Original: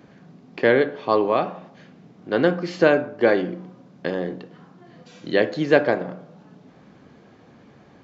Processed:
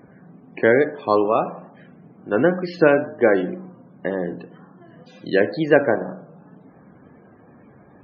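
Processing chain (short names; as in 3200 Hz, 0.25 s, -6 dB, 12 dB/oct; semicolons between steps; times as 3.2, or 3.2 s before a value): wow and flutter 65 cents; loudest bins only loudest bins 64; gain +1.5 dB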